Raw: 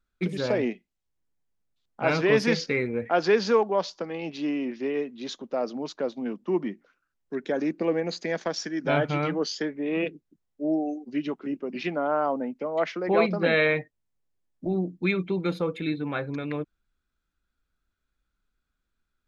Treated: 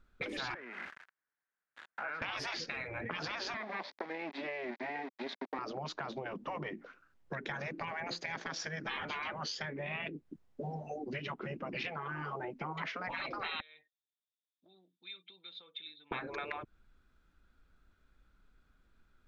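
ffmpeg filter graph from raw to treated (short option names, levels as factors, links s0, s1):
-filter_complex "[0:a]asettb=1/sr,asplit=3[s0][s1][s2];[s0]atrim=end=0.544[s3];[s1]atrim=start=0.54:end=2.22,asetpts=PTS-STARTPTS,afade=t=in:d=0.004:c=qsin,afade=t=out:st=1.676:d=0.004:c=qsin,aeval=exprs='val(0)+0.5*0.0251*sgn(val(0))':c=same,acompressor=threshold=0.0141:ratio=2:attack=3.2:release=140:knee=1:detection=peak,bandpass=f=1600:t=q:w=3.8[s4];[s2]atrim=start=2.216[s5];[s3][s4]acrossfade=d=0.004:c1=hsin:c2=qsin[s6];[s6][s5]acrossfade=d=0.004:c1=qsin:c2=hsin,asettb=1/sr,asplit=3[s7][s8][s9];[s7]atrim=end=3.544[s10];[s8]atrim=start=3.54:end=5.59,asetpts=PTS-STARTPTS,afade=t=in:d=0.004:c=qsin,afade=t=out:st=2.046:d=0.004:c=qsin,aeval=exprs='(tanh(15.8*val(0)+0.7)-tanh(0.7))/15.8':c=same,aeval=exprs='val(0)*gte(abs(val(0)),0.00794)':c=same,highpass=f=270:w=0.5412,highpass=f=270:w=1.3066,equalizer=f=330:t=q:w=4:g=-8,equalizer=f=480:t=q:w=4:g=-9,equalizer=f=1300:t=q:w=4:g=-7,equalizer=f=2000:t=q:w=4:g=5,equalizer=f=2900:t=q:w=4:g=-9,lowpass=f=4200:w=0.5412,lowpass=f=4200:w=1.3066[s11];[s9]atrim=start=5.586[s12];[s10][s11]acrossfade=d=0.004:c1=hsin:c2=qsin[s13];[s13][s12]acrossfade=d=0.004:c1=qsin:c2=hsin,asettb=1/sr,asplit=3[s14][s15][s16];[s14]atrim=end=13.604[s17];[s15]atrim=start=13.6:end=16.12,asetpts=PTS-STARTPTS,afade=t=in:d=0.004:c=qsin,afade=t=out:st=2.516:d=0.004:c=qsin,acompressor=threshold=0.0224:ratio=2.5:attack=3.2:release=140:knee=1:detection=peak,bandpass=f=3600:t=q:w=14[s18];[s16]atrim=start=16.116[s19];[s17][s18]acrossfade=d=0.004:c1=hsin:c2=qsin[s20];[s20][s19]acrossfade=d=0.004:c1=qsin:c2=hsin,lowpass=f=2000:p=1,afftfilt=real='re*lt(hypot(re,im),0.0708)':imag='im*lt(hypot(re,im),0.0708)':win_size=1024:overlap=0.75,acompressor=threshold=0.00355:ratio=6,volume=3.98"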